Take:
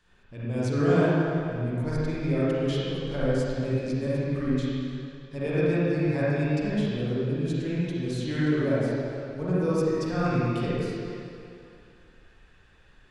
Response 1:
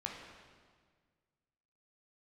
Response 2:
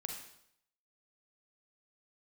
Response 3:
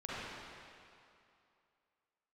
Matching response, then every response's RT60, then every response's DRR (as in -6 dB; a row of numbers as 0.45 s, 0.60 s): 3; 1.7 s, 0.70 s, 2.6 s; -1.0 dB, 1.5 dB, -9.5 dB